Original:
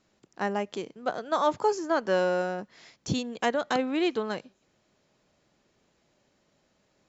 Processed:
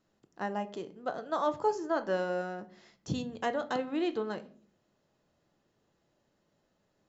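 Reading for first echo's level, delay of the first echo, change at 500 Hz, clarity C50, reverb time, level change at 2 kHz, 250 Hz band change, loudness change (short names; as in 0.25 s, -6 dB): none, none, -5.0 dB, 17.5 dB, 0.50 s, -6.5 dB, -4.5 dB, -5.0 dB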